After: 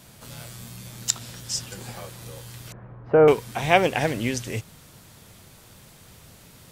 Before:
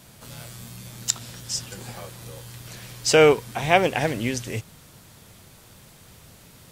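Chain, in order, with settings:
0:02.72–0:03.28: low-pass filter 1,300 Hz 24 dB per octave

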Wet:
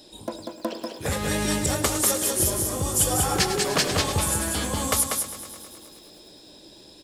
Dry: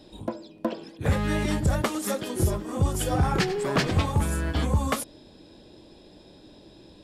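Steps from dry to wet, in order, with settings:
bass and treble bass −7 dB, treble +13 dB
single-tap delay 192 ms −4.5 dB
feedback echo at a low word length 106 ms, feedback 80%, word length 8 bits, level −14 dB

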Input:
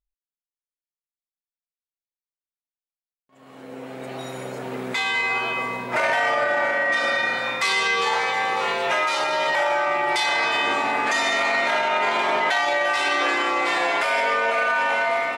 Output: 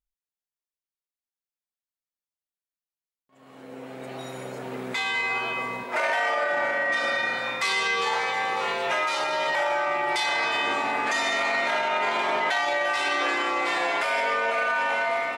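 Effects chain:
0:05.83–0:06.53: high-pass filter 300 Hz 12 dB per octave
level −3.5 dB

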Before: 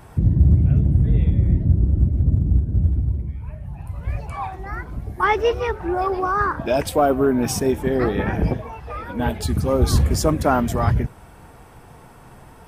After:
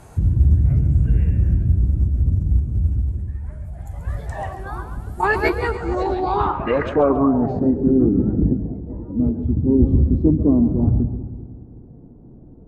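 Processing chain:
echo with a time of its own for lows and highs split 400 Hz, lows 192 ms, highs 135 ms, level −10 dB
formants moved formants −4 semitones
low-pass filter sweep 12,000 Hz → 290 Hz, 0:05.52–0:08.11

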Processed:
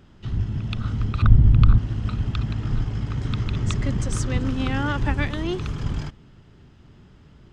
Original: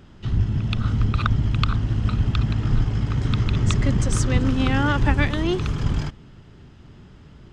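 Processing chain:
0:01.22–0:01.78: spectral tilt −3 dB per octave
level −4 dB

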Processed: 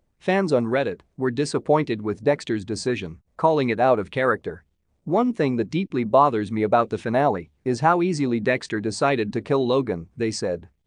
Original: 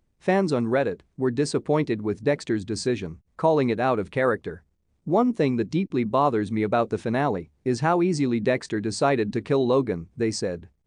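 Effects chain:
auto-filter bell 1.8 Hz 550–3,500 Hz +9 dB

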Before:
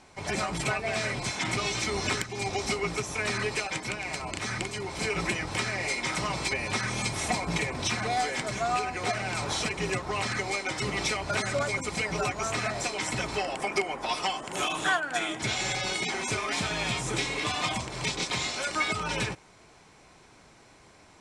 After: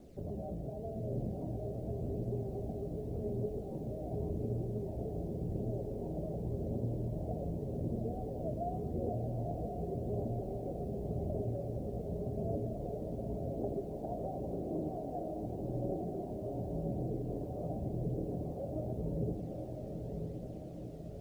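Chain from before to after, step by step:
0:01.73–0:03.05: variable-slope delta modulation 32 kbit/s
Butterworth low-pass 620 Hz 48 dB per octave
mains-hum notches 50/100/150/200/250 Hz
in parallel at +1 dB: brickwall limiter −30.5 dBFS, peak gain reduction 10.5 dB
on the sum: downward compressor 12 to 1, threshold −33 dBFS, peak gain reduction 12 dB
bit reduction 11 bits
flanger 0.88 Hz, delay 0.1 ms, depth 1.6 ms, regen +44%
feedback delay with all-pass diffusion 988 ms, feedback 59%, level −4 dB
on a send at −8.5 dB: convolution reverb RT60 0.95 s, pre-delay 4 ms

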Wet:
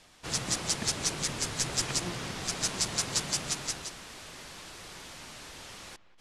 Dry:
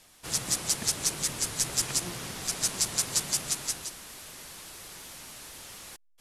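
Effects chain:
high-frequency loss of the air 68 metres
on a send: delay with a low-pass on its return 187 ms, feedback 41%, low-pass 2,900 Hz, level −18 dB
on the sum: level +2.5 dB

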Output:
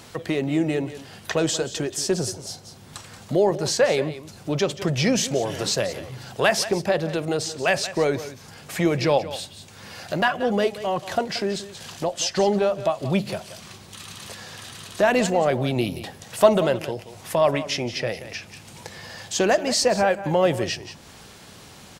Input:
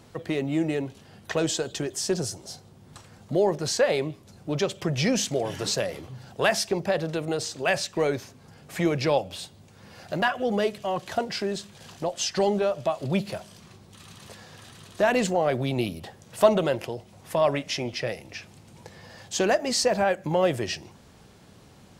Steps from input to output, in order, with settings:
single-tap delay 179 ms −14.5 dB
one half of a high-frequency compander encoder only
level +3 dB

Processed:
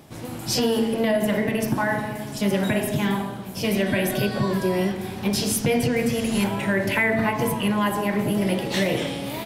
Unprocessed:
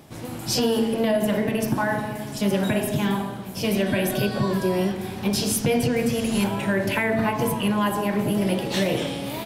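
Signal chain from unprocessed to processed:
dynamic equaliser 2,000 Hz, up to +6 dB, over −47 dBFS, Q 5.4

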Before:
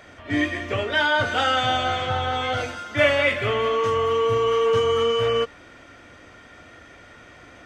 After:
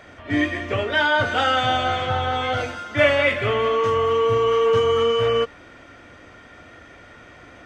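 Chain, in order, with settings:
high-shelf EQ 4,200 Hz −5.5 dB
level +2 dB

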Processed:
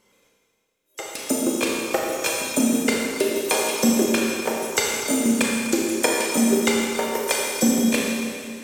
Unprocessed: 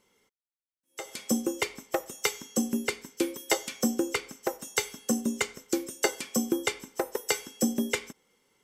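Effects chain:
pitch shifter gated in a rhythm +2.5 semitones, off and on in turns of 118 ms
four-comb reverb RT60 2.3 s, combs from 27 ms, DRR −2.5 dB
level +5 dB

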